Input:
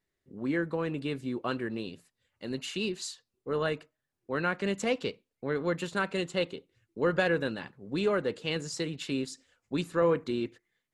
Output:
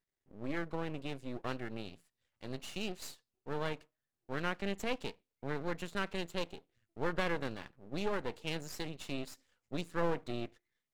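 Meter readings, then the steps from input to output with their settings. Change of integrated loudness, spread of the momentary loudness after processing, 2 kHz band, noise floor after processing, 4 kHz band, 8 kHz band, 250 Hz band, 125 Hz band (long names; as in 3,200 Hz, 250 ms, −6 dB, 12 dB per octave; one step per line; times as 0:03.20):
−8.0 dB, 12 LU, −7.0 dB, below −85 dBFS, −6.0 dB, −8.0 dB, −8.0 dB, −6.0 dB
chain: half-wave rectification
level −4 dB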